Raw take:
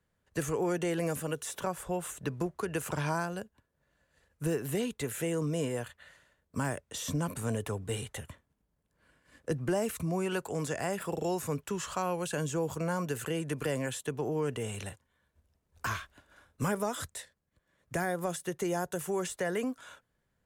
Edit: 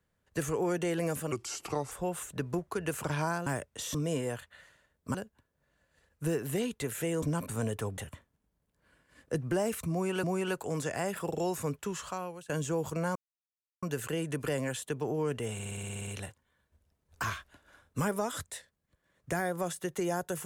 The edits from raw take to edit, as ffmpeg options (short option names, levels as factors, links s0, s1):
-filter_complex "[0:a]asplit=20[s0][s1][s2][s3][s4][s5][s6][s7][s8][s9][s10][s11][s12][s13][s14][s15][s16][s17][s18][s19];[s0]atrim=end=1.324[s20];[s1]atrim=start=1.32:end=1.79,asetpts=PTS-STARTPTS,asetrate=34839,aresample=44100[s21];[s2]atrim=start=1.786:end=3.342[s22];[s3]atrim=start=6.618:end=7.102[s23];[s4]atrim=start=5.418:end=6.622[s24];[s5]atrim=start=3.338:end=5.422[s25];[s6]atrim=start=7.098:end=7.852[s26];[s7]atrim=start=8.138:end=10.402[s27];[s8]atrim=start=10.078:end=12.34,asetpts=PTS-STARTPTS,afade=t=out:st=1.352:d=0.91:c=qsin:silence=0.0841395[s28];[s9]atrim=start=12.34:end=13,asetpts=PTS-STARTPTS,afade=t=in:d=0.004:c=hsin:silence=0.0841395,afade=t=out:st=0.656:d=0.004:c=hsin,apad=pad_dur=0.67[s29];[s10]atrim=start=13:end=14.772,asetpts=PTS-STARTPTS,afade=t=in:d=0.004:c=hsin[s30];[s11]atrim=start=14.708:end=14.772[s31];[s12]atrim=start=14.708:end=14.772[s32];[s13]atrim=start=14.708:end=14.772[s33];[s14]atrim=start=14.708:end=14.772[s34];[s15]atrim=start=14.708:end=14.772[s35];[s16]atrim=start=14.708:end=14.772[s36];[s17]atrim=start=14.708:end=14.772[s37];[s18]atrim=start=14.708:end=14.772[s38];[s19]atrim=start=14.708[s39];[s20][s21]acrossfade=d=0.004:c1=hsin:c2=hsin[s40];[s40][s22]acrossfade=d=0.004:c1=hsin:c2=hsin[s41];[s41][s23]acrossfade=d=0.004:c1=hsin:c2=hsin[s42];[s42][s24]acrossfade=d=0.004:c1=hsin:c2=hsin[s43];[s43][s25]acrossfade=d=0.004:c1=hsin:c2=hsin[s44];[s44][s26]acrossfade=d=0.004:c1=hsin:c2=hsin[s45];[s45][s27]acrossfade=d=0.004:c1=hsin:c2=hsin[s46];[s28][s29][s30]concat=n=3:v=0:a=1[s47];[s46][s47]acrossfade=d=0.004:c1=hsin:c2=hsin[s48];[s48][s31]acrossfade=d=0.004:c1=hsin:c2=hsin[s49];[s49][s32]acrossfade=d=0.004:c1=hsin:c2=hsin[s50];[s50][s33]acrossfade=d=0.004:c1=hsin:c2=hsin[s51];[s51][s34]acrossfade=d=0.004:c1=hsin:c2=hsin[s52];[s52][s35]acrossfade=d=0.004:c1=hsin:c2=hsin[s53];[s53][s36]acrossfade=d=0.004:c1=hsin:c2=hsin[s54];[s54][s37]acrossfade=d=0.004:c1=hsin:c2=hsin[s55];[s55][s38]acrossfade=d=0.004:c1=hsin:c2=hsin[s56];[s56][s39]acrossfade=d=0.004:c1=hsin:c2=hsin"